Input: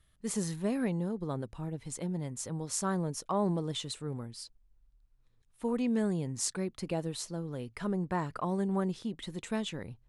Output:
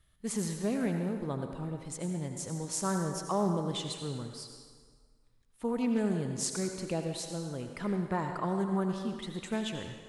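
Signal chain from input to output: on a send at -4 dB: bass shelf 230 Hz -10 dB + reverberation RT60 1.7 s, pre-delay 68 ms; on the sum: loudspeaker Doppler distortion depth 0.13 ms

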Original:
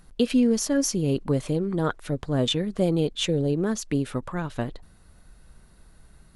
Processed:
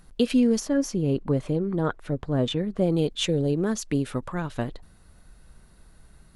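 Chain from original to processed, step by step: 0.60–2.90 s: treble shelf 3.2 kHz -11.5 dB

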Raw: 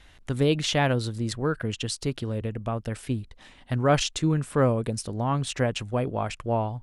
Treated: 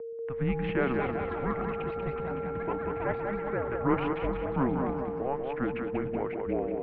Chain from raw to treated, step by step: small samples zeroed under -42 dBFS; whistle 730 Hz -32 dBFS; ever faster or slower copies 484 ms, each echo +7 st, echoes 3, each echo -6 dB; two-band feedback delay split 450 Hz, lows 123 ms, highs 188 ms, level -5 dB; mistuned SSB -270 Hz 360–2500 Hz; trim -4 dB

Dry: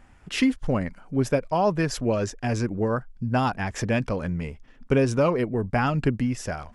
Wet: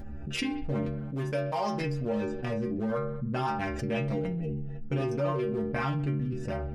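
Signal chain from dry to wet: local Wiener filter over 41 samples; 1.00–1.81 s: tilt EQ +2.5 dB/octave; 3.93–4.96 s: comb 6.1 ms, depth 93%; vibrato 6.1 Hz 5.6 cents; inharmonic resonator 69 Hz, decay 0.59 s, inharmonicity 0.008; on a send: bucket-brigade echo 64 ms, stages 2048, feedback 56%, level -21 dB; on the sum: level flattener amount 70%

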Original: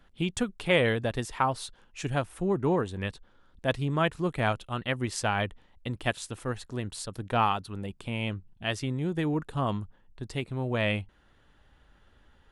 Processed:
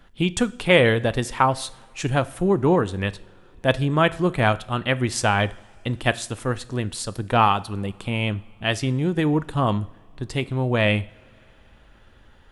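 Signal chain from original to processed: two-slope reverb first 0.55 s, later 4.3 s, from -22 dB, DRR 15 dB; trim +7.5 dB

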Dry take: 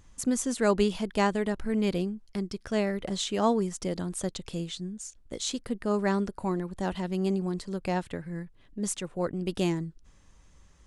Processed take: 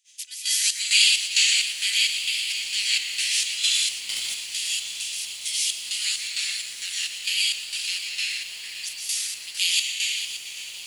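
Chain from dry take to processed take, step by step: spectral peaks clipped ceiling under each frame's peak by 27 dB; steep high-pass 2.5 kHz 36 dB/octave; gate -58 dBFS, range -16 dB; reverberation RT60 2.3 s, pre-delay 117 ms, DRR -10 dB; square tremolo 2.2 Hz, depth 65%, duty 55%; 3.91–4.52 s: power-law waveshaper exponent 1.4; echo that smears into a reverb 1415 ms, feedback 50%, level -14.5 dB; bit-crushed delay 570 ms, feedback 55%, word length 7-bit, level -11.5 dB; trim +2.5 dB

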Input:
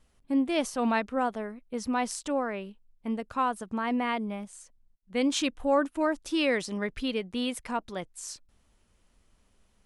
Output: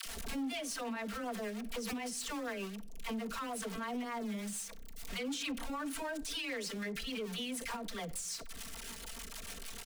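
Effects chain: jump at every zero crossing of -37.5 dBFS; tilt shelf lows -5.5 dB, about 710 Hz; comb 4.4 ms, depth 96%; phase dispersion lows, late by 64 ms, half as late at 520 Hz; peak limiter -24.5 dBFS, peak gain reduction 16.5 dB; rotary cabinet horn 6.7 Hz; on a send at -18 dB: reverberation RT60 0.55 s, pre-delay 6 ms; on the sum: saturation -29 dBFS, distortion -17 dB; swell ahead of each attack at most 34 dB/s; trim -3.5 dB

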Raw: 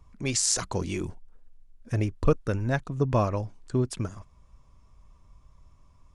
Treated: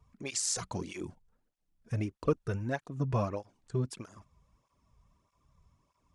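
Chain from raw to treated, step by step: cancelling through-zero flanger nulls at 1.6 Hz, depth 3.8 ms; trim -4 dB

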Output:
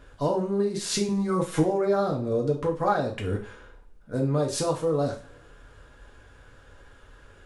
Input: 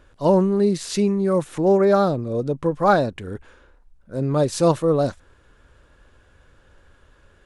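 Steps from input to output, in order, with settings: compression 6:1, threshold -25 dBFS, peak gain reduction 13 dB; 1.08–1.63 s: comb 6.2 ms, depth 94%; two-slope reverb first 0.34 s, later 1.6 s, from -26 dB, DRR -1 dB

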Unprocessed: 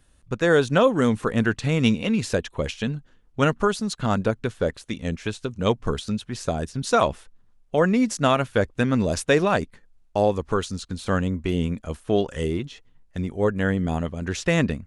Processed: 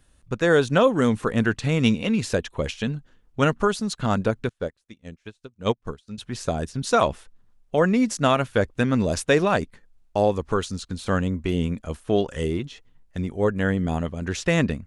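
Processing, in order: 4.49–6.18 s: upward expansion 2.5:1, over -35 dBFS

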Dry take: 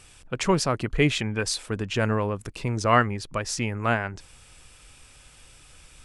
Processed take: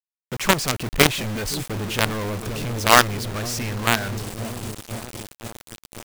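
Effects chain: feedback echo behind a low-pass 521 ms, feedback 63%, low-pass 420 Hz, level -10 dB; companded quantiser 2-bit; trim -1 dB

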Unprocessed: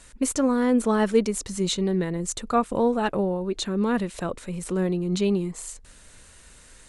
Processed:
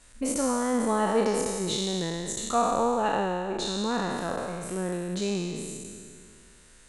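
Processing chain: spectral sustain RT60 2.21 s; dynamic bell 810 Hz, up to +7 dB, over -37 dBFS, Q 1.7; trim -8 dB

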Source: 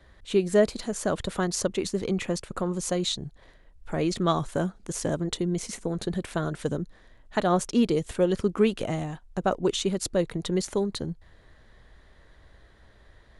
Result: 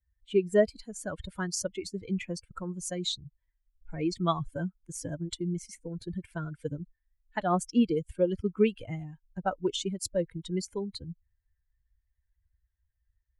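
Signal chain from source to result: expander on every frequency bin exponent 2

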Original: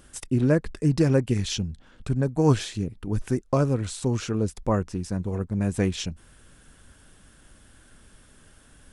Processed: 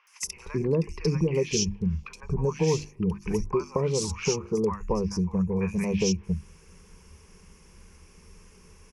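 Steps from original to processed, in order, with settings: hum notches 50/100/150/200/250/300/350 Hz; spectral noise reduction 6 dB; rippled EQ curve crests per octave 0.8, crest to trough 15 dB; compression 4:1, threshold -30 dBFS, peak gain reduction 14.5 dB; three bands offset in time mids, highs, lows 70/230 ms, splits 1/3 kHz; trim +6.5 dB

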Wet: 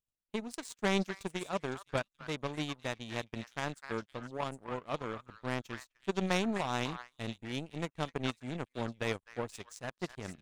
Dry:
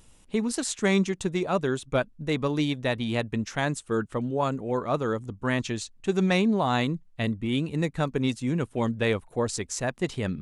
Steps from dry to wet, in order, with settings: repeats whose band climbs or falls 254 ms, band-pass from 1.4 kHz, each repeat 1.4 oct, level -1 dB; power-law waveshaper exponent 2; trim -2 dB

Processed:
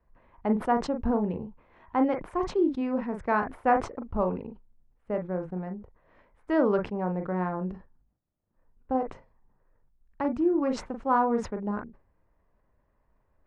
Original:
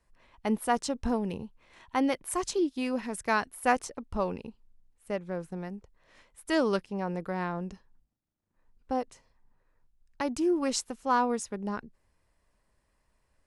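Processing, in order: low-pass 1.3 kHz 12 dB/octave; reverberation, pre-delay 38 ms, DRR 8 dB; decay stretcher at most 140 dB/s; trim +2.5 dB

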